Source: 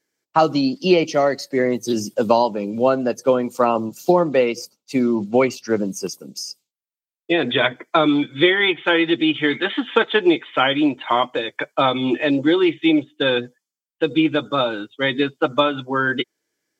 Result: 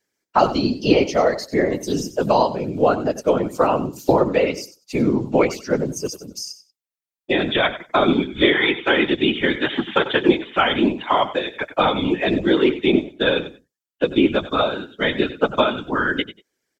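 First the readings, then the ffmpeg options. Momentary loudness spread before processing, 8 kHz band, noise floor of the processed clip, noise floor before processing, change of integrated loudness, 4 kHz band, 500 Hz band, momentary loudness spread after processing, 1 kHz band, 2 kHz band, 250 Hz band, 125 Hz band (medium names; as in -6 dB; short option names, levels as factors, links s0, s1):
7 LU, 0.0 dB, under -85 dBFS, under -85 dBFS, -0.5 dB, -0.5 dB, 0.0 dB, 7 LU, 0.0 dB, -0.5 dB, -1.0 dB, +2.0 dB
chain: -af "aecho=1:1:94|188:0.2|0.0359,afftfilt=real='hypot(re,im)*cos(2*PI*random(0))':imag='hypot(re,im)*sin(2*PI*random(1))':win_size=512:overlap=0.75,volume=1.88"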